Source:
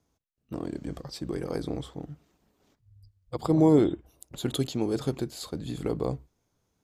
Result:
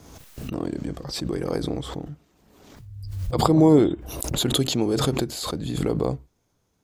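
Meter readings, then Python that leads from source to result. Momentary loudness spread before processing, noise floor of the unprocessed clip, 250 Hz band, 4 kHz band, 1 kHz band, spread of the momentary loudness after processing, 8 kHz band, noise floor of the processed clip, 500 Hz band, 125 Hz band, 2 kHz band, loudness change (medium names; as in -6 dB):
19 LU, -77 dBFS, +5.0 dB, +12.0 dB, +8.5 dB, 18 LU, +12.0 dB, -70 dBFS, +5.0 dB, +6.0 dB, +8.5 dB, +5.0 dB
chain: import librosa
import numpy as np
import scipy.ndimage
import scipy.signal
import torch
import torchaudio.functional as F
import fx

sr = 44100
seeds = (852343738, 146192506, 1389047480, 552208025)

y = fx.pre_swell(x, sr, db_per_s=40.0)
y = y * librosa.db_to_amplitude(4.0)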